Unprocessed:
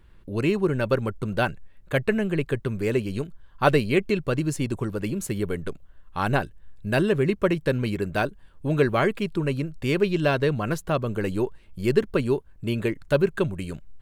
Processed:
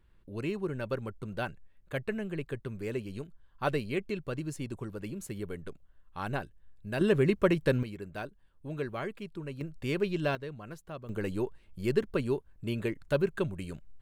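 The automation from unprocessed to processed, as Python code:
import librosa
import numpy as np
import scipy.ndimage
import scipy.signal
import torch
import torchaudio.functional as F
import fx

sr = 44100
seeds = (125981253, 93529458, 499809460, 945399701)

y = fx.gain(x, sr, db=fx.steps((0.0, -11.0), (7.01, -3.0), (7.83, -14.5), (9.61, -8.0), (10.35, -18.0), (11.09, -7.0)))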